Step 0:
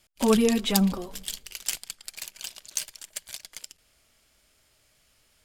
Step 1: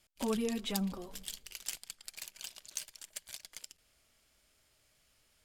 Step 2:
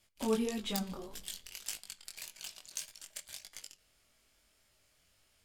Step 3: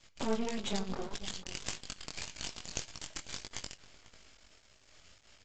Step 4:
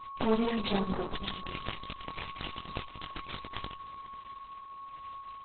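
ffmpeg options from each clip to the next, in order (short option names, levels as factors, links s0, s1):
-af "acompressor=threshold=0.0158:ratio=1.5,volume=0.501"
-af "flanger=delay=9.8:depth=4.2:regen=84:speed=0.55:shape=triangular,aeval=exprs='(mod(10.6*val(0)+1,2)-1)/10.6':c=same,flanger=delay=18.5:depth=4.5:speed=1.7,volume=2.37"
-filter_complex "[0:a]acompressor=threshold=0.00316:ratio=2,aresample=16000,aeval=exprs='max(val(0),0)':c=same,aresample=44100,asplit=2[s0][s1];[s1]adelay=495.6,volume=0.178,highshelf=f=4000:g=-11.2[s2];[s0][s2]amix=inputs=2:normalize=0,volume=5.31"
-af "aeval=exprs='val(0)+0.00447*sin(2*PI*1100*n/s)':c=same,volume=2.24" -ar 48000 -c:a libopus -b:a 8k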